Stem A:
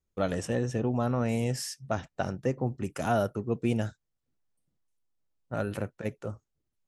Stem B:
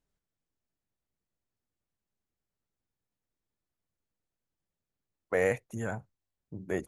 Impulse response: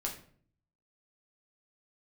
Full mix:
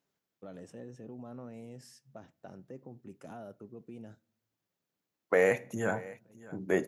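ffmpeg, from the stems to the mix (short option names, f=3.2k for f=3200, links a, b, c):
-filter_complex "[0:a]tiltshelf=f=720:g=5,alimiter=limit=-20dB:level=0:latency=1:release=52,adelay=250,volume=-15.5dB,asplit=2[a][b];[b]volume=-20.5dB[c];[1:a]equalizer=f=8.9k:w=4.3:g=-12.5,alimiter=limit=-18.5dB:level=0:latency=1:release=38,volume=3dB,asplit=4[d][e][f][g];[e]volume=-11dB[h];[f]volume=-18dB[i];[g]apad=whole_len=318774[j];[a][j]sidechaincompress=threshold=-48dB:ratio=8:attack=16:release=1070[k];[2:a]atrim=start_sample=2205[l];[c][h]amix=inputs=2:normalize=0[m];[m][l]afir=irnorm=-1:irlink=0[n];[i]aecho=0:1:610:1[o];[k][d][n][o]amix=inputs=4:normalize=0,highpass=180"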